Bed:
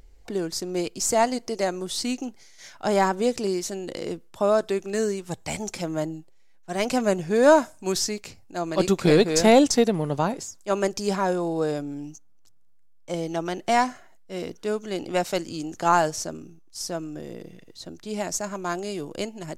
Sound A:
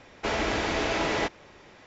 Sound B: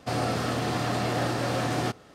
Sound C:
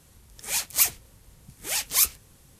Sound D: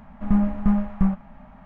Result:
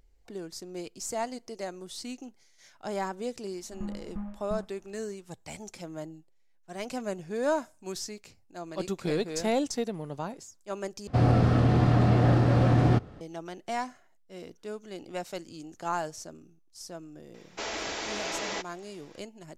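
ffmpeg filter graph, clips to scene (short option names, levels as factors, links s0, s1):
-filter_complex "[0:a]volume=0.266[s0];[2:a]aemphasis=mode=reproduction:type=riaa[s1];[1:a]bass=f=250:g=-10,treble=f=4000:g=11[s2];[s0]asplit=2[s3][s4];[s3]atrim=end=11.074[s5];[s1]atrim=end=2.14,asetpts=PTS-STARTPTS,volume=0.891[s6];[s4]atrim=start=13.206[s7];[4:a]atrim=end=1.65,asetpts=PTS-STARTPTS,volume=0.133,afade=t=in:d=0.004:c=hsin,afade=t=out:st=1.646:d=0.004:c=hsin,adelay=3500[s8];[s2]atrim=end=1.86,asetpts=PTS-STARTPTS,volume=0.422,afade=t=in:d=0.004:c=hsin,afade=t=out:st=1.856:d=0.004:c=hsin,adelay=17340[s9];[s5][s6]acrossfade=d=0.004:c1=hsin:c2=hsin[s10];[s10][s7]acrossfade=d=0.004:c1=hsin:c2=hsin[s11];[s11][s8][s9]amix=inputs=3:normalize=0"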